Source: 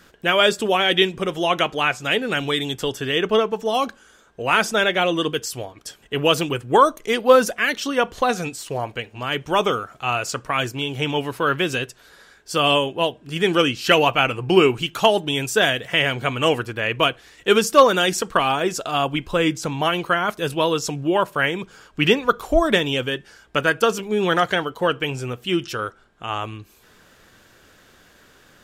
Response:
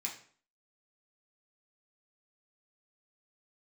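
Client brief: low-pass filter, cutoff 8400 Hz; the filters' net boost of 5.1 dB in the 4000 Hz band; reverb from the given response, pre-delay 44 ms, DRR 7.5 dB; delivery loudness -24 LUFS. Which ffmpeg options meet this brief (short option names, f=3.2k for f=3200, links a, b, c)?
-filter_complex "[0:a]lowpass=8.4k,equalizer=f=4k:t=o:g=7.5,asplit=2[a][b];[1:a]atrim=start_sample=2205,adelay=44[c];[b][c]afir=irnorm=-1:irlink=0,volume=-8dB[d];[a][d]amix=inputs=2:normalize=0,volume=-6dB"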